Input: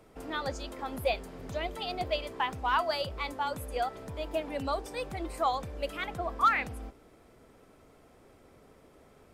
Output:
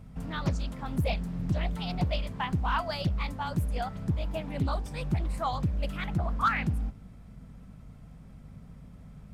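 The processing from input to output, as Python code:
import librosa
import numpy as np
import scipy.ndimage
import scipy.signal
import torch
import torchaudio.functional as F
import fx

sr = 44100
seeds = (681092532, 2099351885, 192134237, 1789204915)

y = fx.low_shelf_res(x, sr, hz=250.0, db=12.5, q=3.0)
y = fx.add_hum(y, sr, base_hz=50, snr_db=20)
y = fx.doppler_dist(y, sr, depth_ms=0.56)
y = y * librosa.db_to_amplitude(-1.5)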